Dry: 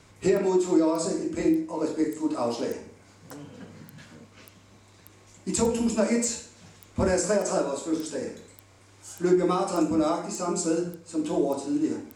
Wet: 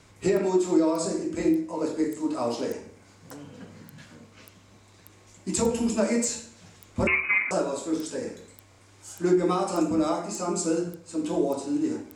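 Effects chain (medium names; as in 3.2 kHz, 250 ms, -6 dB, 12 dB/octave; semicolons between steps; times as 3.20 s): 7.07–7.51 s: frequency inversion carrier 2.7 kHz; de-hum 75.65 Hz, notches 21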